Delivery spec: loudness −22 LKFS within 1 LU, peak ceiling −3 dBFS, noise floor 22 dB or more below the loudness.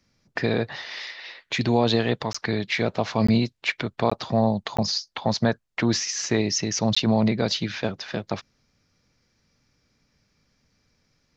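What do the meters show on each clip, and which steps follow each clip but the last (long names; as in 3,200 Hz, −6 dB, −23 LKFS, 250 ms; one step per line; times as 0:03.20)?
number of dropouts 5; longest dropout 15 ms; integrated loudness −24.5 LKFS; sample peak −7.0 dBFS; target loudness −22.0 LKFS
→ repair the gap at 0:02.33/0:03.27/0:04.10/0:04.77/0:06.95, 15 ms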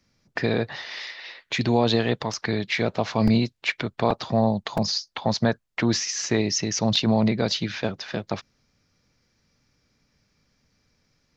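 number of dropouts 0; integrated loudness −24.5 LKFS; sample peak −7.0 dBFS; target loudness −22.0 LKFS
→ level +2.5 dB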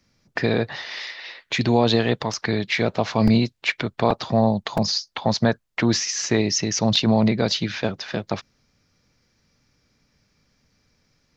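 integrated loudness −22.0 LKFS; sample peak −4.5 dBFS; background noise floor −68 dBFS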